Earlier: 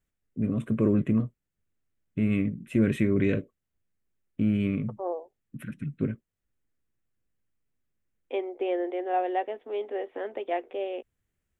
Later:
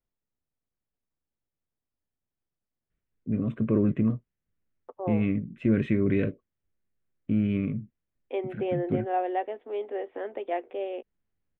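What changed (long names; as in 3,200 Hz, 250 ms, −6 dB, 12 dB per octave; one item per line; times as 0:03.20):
first voice: entry +2.90 s
master: add high-frequency loss of the air 200 metres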